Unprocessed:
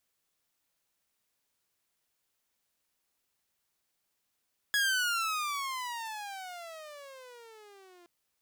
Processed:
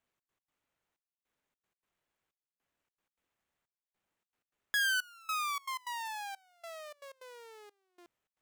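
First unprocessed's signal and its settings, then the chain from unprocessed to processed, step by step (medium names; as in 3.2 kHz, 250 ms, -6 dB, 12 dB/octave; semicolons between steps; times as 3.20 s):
gliding synth tone saw, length 3.32 s, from 1.68 kHz, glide -27.5 st, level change -30.5 dB, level -22 dB
median filter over 9 samples; trance gate "xx.x.xxxxx...x" 156 bpm -24 dB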